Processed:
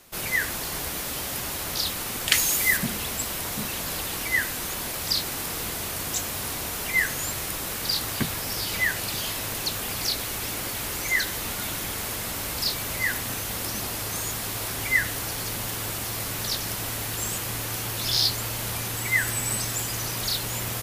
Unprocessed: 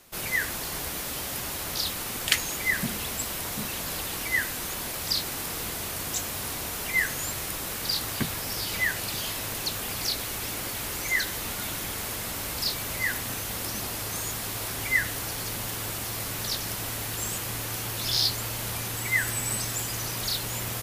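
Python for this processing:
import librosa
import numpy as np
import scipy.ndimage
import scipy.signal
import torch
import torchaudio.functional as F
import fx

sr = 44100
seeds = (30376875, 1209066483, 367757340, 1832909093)

y = fx.high_shelf(x, sr, hz=fx.line((2.34, 3500.0), (2.76, 6000.0)), db=9.5, at=(2.34, 2.76), fade=0.02)
y = y * 10.0 ** (2.0 / 20.0)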